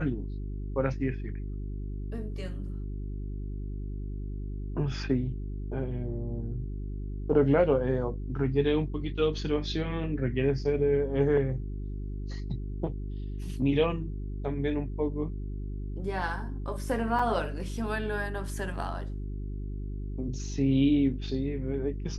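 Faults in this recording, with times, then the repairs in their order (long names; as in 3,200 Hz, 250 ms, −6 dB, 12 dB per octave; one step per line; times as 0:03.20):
mains hum 50 Hz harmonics 8 −35 dBFS
0:17.19: drop-out 4.4 ms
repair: hum removal 50 Hz, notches 8
repair the gap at 0:17.19, 4.4 ms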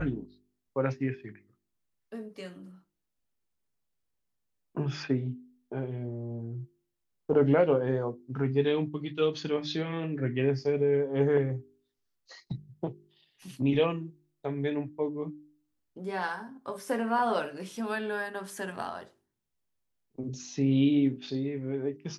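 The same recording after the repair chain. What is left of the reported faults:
none of them is left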